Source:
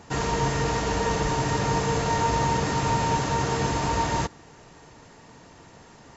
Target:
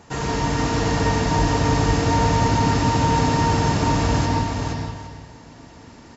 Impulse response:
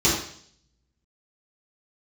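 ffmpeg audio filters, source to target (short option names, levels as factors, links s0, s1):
-filter_complex "[0:a]aecho=1:1:469|809:0.596|0.15,asplit=2[s0][s1];[1:a]atrim=start_sample=2205,asetrate=33516,aresample=44100,adelay=108[s2];[s1][s2]afir=irnorm=-1:irlink=0,volume=0.0944[s3];[s0][s3]amix=inputs=2:normalize=0"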